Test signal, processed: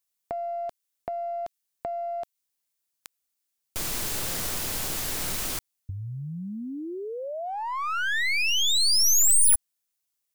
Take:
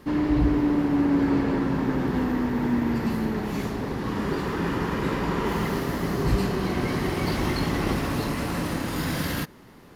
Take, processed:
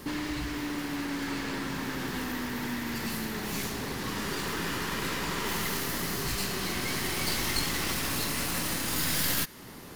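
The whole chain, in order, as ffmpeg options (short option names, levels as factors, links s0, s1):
-filter_complex "[0:a]highshelf=f=3800:g=11.5,acrossover=split=1300[s0][s1];[s0]acompressor=threshold=0.0141:ratio=6[s2];[s1]aeval=exprs='clip(val(0),-1,0.00473)':c=same[s3];[s2][s3]amix=inputs=2:normalize=0,volume=1.41"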